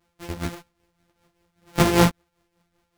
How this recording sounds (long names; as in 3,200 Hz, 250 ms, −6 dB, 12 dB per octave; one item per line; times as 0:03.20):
a buzz of ramps at a fixed pitch in blocks of 256 samples
tremolo triangle 5.1 Hz, depth 65%
a shimmering, thickened sound